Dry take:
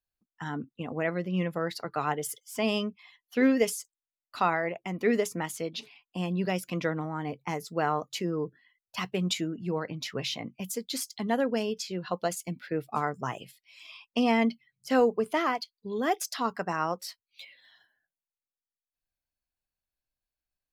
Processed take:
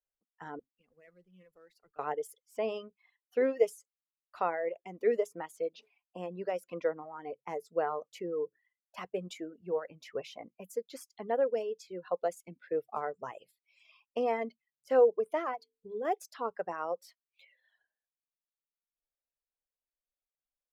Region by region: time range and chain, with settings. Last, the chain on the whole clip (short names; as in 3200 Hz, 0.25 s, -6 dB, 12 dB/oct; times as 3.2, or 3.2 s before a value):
0.59–1.99 G.711 law mismatch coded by mu + passive tone stack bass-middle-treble 6-0-2 + Doppler distortion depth 0.11 ms
15.55–16.05 low shelf 380 Hz +8.5 dB + notches 50/100/150/200/250/300/350/400/450 Hz + compressor 1.5:1, threshold -42 dBFS
whole clip: high shelf 5000 Hz -8 dB; reverb removal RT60 1.5 s; graphic EQ 125/250/500/4000 Hz -10/-6/+12/-8 dB; gain -8 dB